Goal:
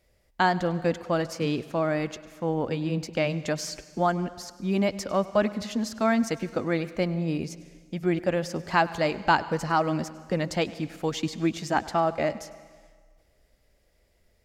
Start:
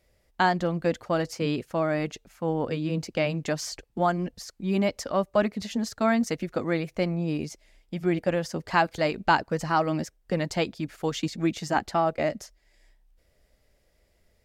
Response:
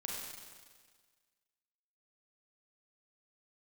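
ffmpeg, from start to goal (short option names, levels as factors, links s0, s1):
-filter_complex "[0:a]asplit=2[s0][s1];[1:a]atrim=start_sample=2205,adelay=101[s2];[s1][s2]afir=irnorm=-1:irlink=0,volume=0.158[s3];[s0][s3]amix=inputs=2:normalize=0"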